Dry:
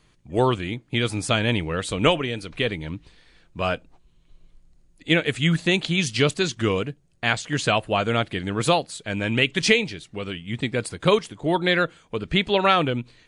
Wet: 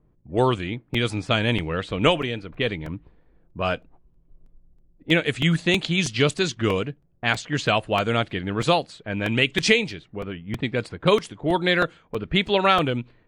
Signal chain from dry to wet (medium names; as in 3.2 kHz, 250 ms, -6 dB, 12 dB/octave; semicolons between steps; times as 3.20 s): level-controlled noise filter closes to 580 Hz, open at -17.5 dBFS; crackling interface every 0.32 s, samples 128, repeat, from 0.94 s